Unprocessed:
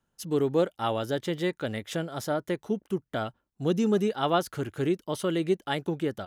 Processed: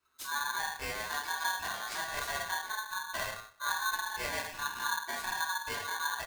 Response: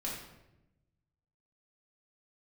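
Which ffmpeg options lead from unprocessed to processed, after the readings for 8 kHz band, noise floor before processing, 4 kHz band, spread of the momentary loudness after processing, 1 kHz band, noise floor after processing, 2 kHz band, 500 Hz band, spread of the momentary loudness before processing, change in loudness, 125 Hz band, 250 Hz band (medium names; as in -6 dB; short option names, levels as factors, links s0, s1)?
+6.5 dB, -80 dBFS, +1.0 dB, 4 LU, -1.0 dB, -53 dBFS, +6.5 dB, -18.5 dB, 8 LU, -5.5 dB, -21.0 dB, -27.0 dB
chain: -filter_complex "[0:a]acompressor=threshold=0.02:ratio=10,asplit=2[s0][s1];[s1]adelay=126,lowpass=f=2000:p=1,volume=0.112,asplit=2[s2][s3];[s3]adelay=126,lowpass=f=2000:p=1,volume=0.31,asplit=2[s4][s5];[s5]adelay=126,lowpass=f=2000:p=1,volume=0.31[s6];[s0][s2][s4][s6]amix=inputs=4:normalize=0[s7];[1:a]atrim=start_sample=2205,afade=t=out:st=0.32:d=0.01,atrim=end_sample=14553,asetrate=52920,aresample=44100[s8];[s7][s8]afir=irnorm=-1:irlink=0,aeval=exprs='val(0)*sgn(sin(2*PI*1300*n/s))':c=same"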